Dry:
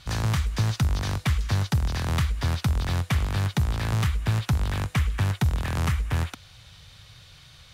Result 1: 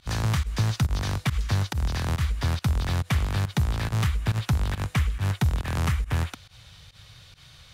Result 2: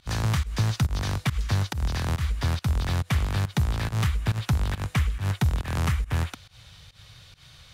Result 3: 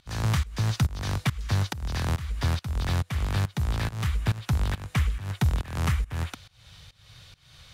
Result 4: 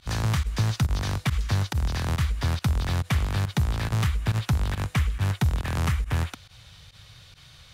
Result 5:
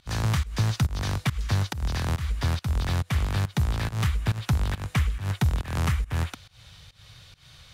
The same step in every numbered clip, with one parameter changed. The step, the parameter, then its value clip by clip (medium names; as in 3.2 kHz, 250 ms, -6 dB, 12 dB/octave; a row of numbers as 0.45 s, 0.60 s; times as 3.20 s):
volume shaper, release: 89 ms, 131 ms, 355 ms, 60 ms, 202 ms